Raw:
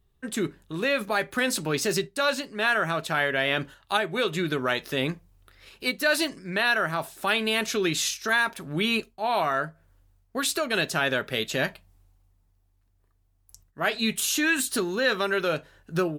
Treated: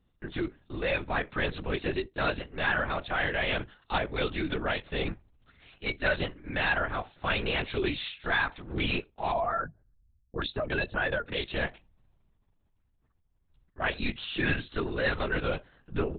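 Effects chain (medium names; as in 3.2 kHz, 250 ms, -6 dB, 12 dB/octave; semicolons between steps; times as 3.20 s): 9.32–11.33 s: spectral contrast enhancement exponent 1.7; LPC vocoder at 8 kHz whisper; trim -4 dB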